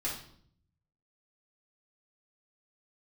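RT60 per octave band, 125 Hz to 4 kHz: 1.2 s, 0.90 s, 0.65 s, 0.55 s, 0.50 s, 0.55 s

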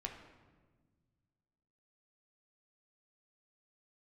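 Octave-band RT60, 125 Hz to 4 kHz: 2.5 s, 2.2 s, 1.6 s, 1.3 s, 1.1 s, 0.90 s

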